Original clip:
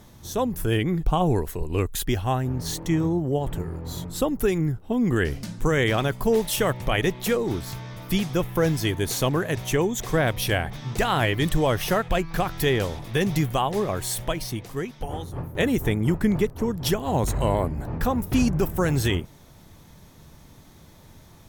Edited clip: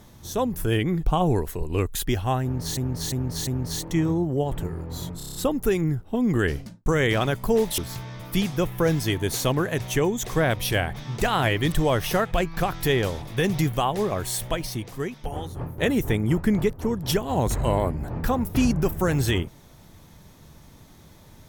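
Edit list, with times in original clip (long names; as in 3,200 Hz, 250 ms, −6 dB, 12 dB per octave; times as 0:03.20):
0:02.42–0:02.77: repeat, 4 plays
0:04.12: stutter 0.03 s, 7 plays
0:05.28–0:05.63: fade out and dull
0:06.55–0:07.55: remove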